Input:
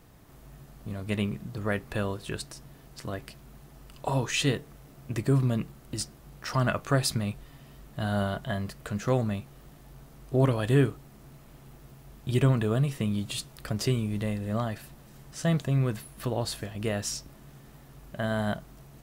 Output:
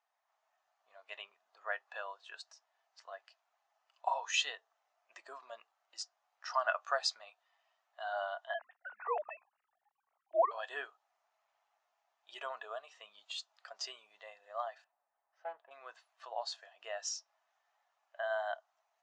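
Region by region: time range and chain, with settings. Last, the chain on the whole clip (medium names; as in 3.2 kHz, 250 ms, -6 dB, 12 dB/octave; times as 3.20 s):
8.54–10.51 s: formants replaced by sine waves + band-stop 230 Hz, Q 6.5
14.84–15.71 s: tape spacing loss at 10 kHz 39 dB + loudspeaker Doppler distortion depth 0.25 ms
whole clip: elliptic band-pass 720–6800 Hz, stop band 70 dB; dynamic bell 2.2 kHz, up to -6 dB, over -58 dBFS, Q 4.7; spectral contrast expander 1.5:1; trim -2.5 dB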